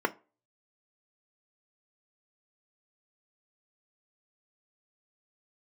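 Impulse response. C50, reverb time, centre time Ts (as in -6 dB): 21.5 dB, 0.35 s, 6 ms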